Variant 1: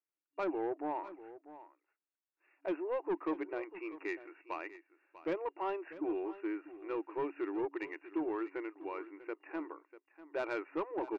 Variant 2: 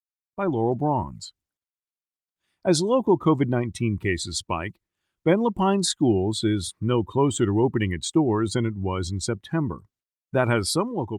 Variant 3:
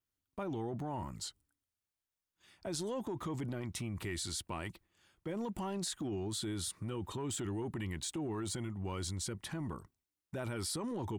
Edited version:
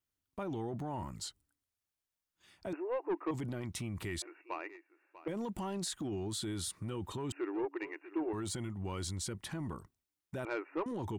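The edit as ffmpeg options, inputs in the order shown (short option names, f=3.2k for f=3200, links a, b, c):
-filter_complex "[0:a]asplit=4[a][b][c][d];[2:a]asplit=5[e][f][g][h][i];[e]atrim=end=2.732[j];[a]atrim=start=2.728:end=3.312[k];[f]atrim=start=3.308:end=4.222[l];[b]atrim=start=4.218:end=5.282[m];[g]atrim=start=5.278:end=7.322[n];[c]atrim=start=7.318:end=8.332[o];[h]atrim=start=8.328:end=10.452[p];[d]atrim=start=10.448:end=10.862[q];[i]atrim=start=10.858[r];[j][k]acrossfade=d=0.004:c1=hsin:c2=hsin[s];[s][l]acrossfade=d=0.004:c1=hsin:c2=hsin[t];[t][m]acrossfade=d=0.004:c1=hsin:c2=hsin[u];[u][n]acrossfade=d=0.004:c1=hsin:c2=hsin[v];[v][o]acrossfade=d=0.004:c1=hsin:c2=hsin[w];[w][p]acrossfade=d=0.004:c1=hsin:c2=hsin[x];[x][q]acrossfade=d=0.004:c1=hsin:c2=hsin[y];[y][r]acrossfade=d=0.004:c1=hsin:c2=hsin"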